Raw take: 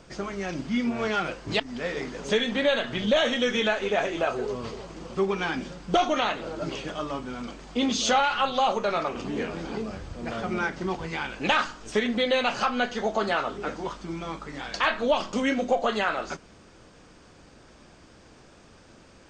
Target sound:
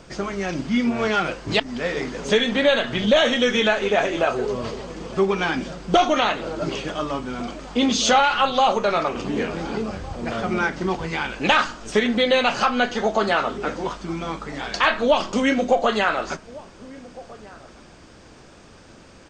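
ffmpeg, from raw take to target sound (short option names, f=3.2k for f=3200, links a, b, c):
-filter_complex "[0:a]asplit=2[a][b];[b]adelay=1458,volume=-20dB,highshelf=f=4k:g=-32.8[c];[a][c]amix=inputs=2:normalize=0,volume=5.5dB"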